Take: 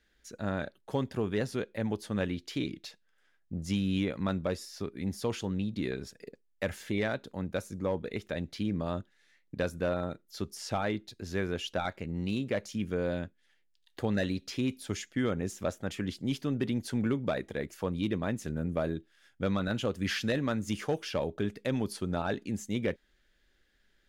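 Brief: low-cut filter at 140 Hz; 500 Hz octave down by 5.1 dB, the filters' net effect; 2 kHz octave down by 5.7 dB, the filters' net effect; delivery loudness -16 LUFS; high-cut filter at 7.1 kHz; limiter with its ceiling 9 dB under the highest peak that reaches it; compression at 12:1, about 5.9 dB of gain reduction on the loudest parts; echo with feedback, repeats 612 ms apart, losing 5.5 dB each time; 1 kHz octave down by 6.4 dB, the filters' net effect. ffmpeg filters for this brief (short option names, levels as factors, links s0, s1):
-af "highpass=140,lowpass=7100,equalizer=f=500:t=o:g=-4.5,equalizer=f=1000:t=o:g=-6,equalizer=f=2000:t=o:g=-5,acompressor=threshold=0.02:ratio=12,alimiter=level_in=2.24:limit=0.0631:level=0:latency=1,volume=0.447,aecho=1:1:612|1224|1836|2448|3060|3672|4284:0.531|0.281|0.149|0.079|0.0419|0.0222|0.0118,volume=18.8"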